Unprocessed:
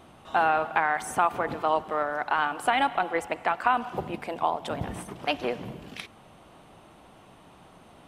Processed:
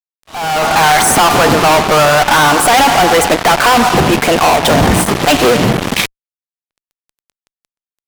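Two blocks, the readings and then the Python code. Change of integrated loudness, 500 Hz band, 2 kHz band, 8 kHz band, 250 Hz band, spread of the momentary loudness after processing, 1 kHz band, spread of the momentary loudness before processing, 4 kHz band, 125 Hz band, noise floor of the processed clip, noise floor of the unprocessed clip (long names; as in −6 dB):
+17.5 dB, +18.5 dB, +17.0 dB, +29.0 dB, +22.0 dB, 7 LU, +15.5 dB, 12 LU, +24.0 dB, +24.5 dB, below −85 dBFS, −53 dBFS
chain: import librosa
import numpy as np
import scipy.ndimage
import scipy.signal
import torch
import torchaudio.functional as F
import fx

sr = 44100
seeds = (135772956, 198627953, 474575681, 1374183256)

y = fx.fuzz(x, sr, gain_db=46.0, gate_db=-42.0)
y = fx.auto_swell(y, sr, attack_ms=595.0)
y = F.gain(torch.from_numpy(y), 6.5).numpy()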